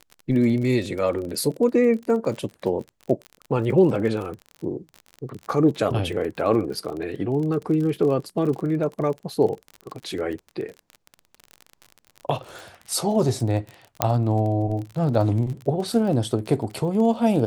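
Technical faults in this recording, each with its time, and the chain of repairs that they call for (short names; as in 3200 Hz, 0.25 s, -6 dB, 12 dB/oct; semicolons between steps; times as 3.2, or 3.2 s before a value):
crackle 31/s -30 dBFS
14.02 pop -2 dBFS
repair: de-click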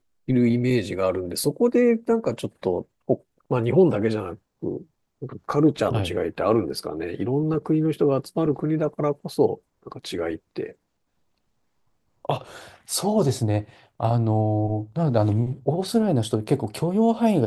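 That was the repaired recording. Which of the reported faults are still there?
none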